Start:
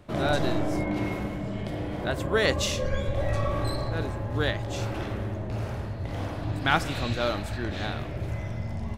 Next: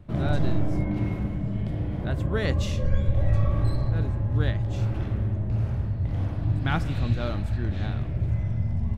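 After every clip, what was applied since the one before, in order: tone controls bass +14 dB, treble -5 dB; trim -6.5 dB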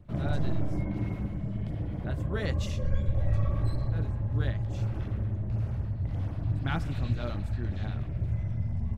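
LFO notch sine 8.3 Hz 270–4100 Hz; trim -4.5 dB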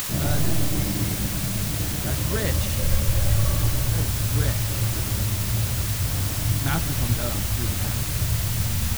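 word length cut 6-bit, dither triangular; upward compressor, threshold -32 dBFS; trim +5.5 dB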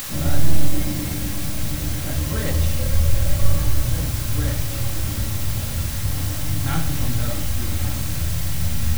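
simulated room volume 690 m³, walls furnished, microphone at 2.2 m; trim -3.5 dB

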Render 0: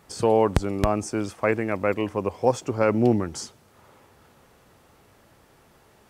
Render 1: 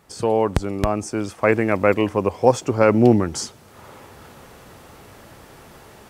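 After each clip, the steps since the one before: level rider gain up to 12 dB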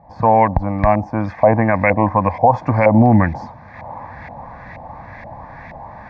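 LFO low-pass saw up 2.1 Hz 680–2200 Hz; static phaser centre 2 kHz, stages 8; loudness maximiser +11.5 dB; trim -1 dB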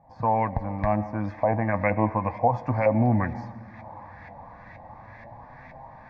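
reverberation RT60 2.0 s, pre-delay 45 ms, DRR 16 dB; flange 0.34 Hz, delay 7.4 ms, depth 3 ms, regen +56%; trim -6 dB

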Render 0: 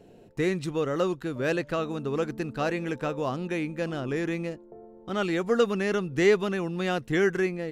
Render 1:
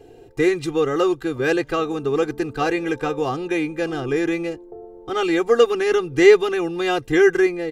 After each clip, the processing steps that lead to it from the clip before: comb 2.5 ms, depth 99%; trim +4 dB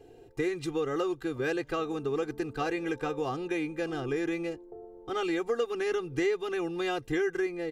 compression 4:1, threshold -19 dBFS, peak gain reduction 11 dB; trim -7.5 dB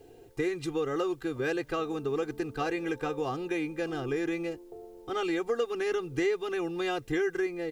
word length cut 12-bit, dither triangular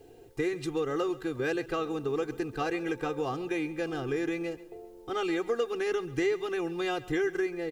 feedback delay 135 ms, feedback 39%, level -18.5 dB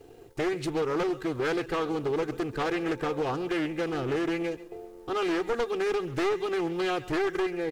one-sided wavefolder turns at -27 dBFS; waveshaping leveller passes 1; loudspeaker Doppler distortion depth 0.3 ms

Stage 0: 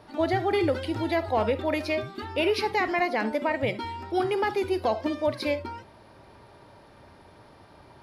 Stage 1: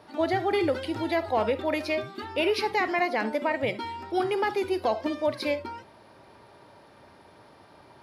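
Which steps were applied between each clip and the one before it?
high-pass 170 Hz 6 dB/octave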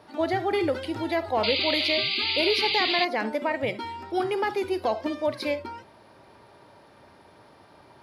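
painted sound noise, 1.43–3.05 s, 2–4.9 kHz -27 dBFS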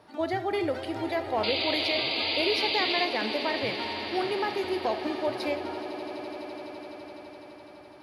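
echo with a slow build-up 84 ms, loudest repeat 8, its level -17 dB; trim -3.5 dB

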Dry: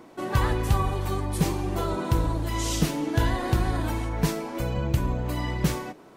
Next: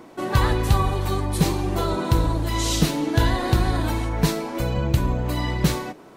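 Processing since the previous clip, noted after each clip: dynamic bell 4 kHz, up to +6 dB, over -54 dBFS, Q 4.4; trim +4 dB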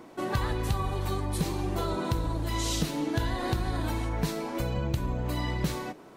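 compression 3:1, threshold -22 dBFS, peak gain reduction 7.5 dB; trim -4 dB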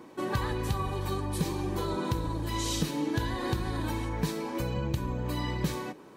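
comb of notches 690 Hz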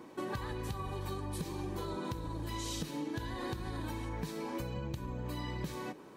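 compression, threshold -33 dBFS, peak gain reduction 10 dB; trim -2 dB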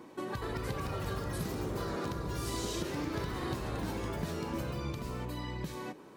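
ever faster or slower copies 273 ms, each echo +3 st, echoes 3

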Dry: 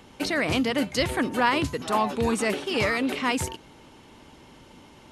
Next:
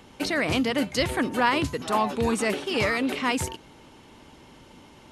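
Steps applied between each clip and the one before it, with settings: no audible change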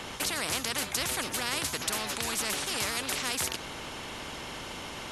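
spectrum-flattening compressor 4:1; trim -4.5 dB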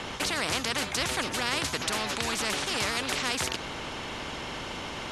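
distance through air 57 m; trim +4 dB

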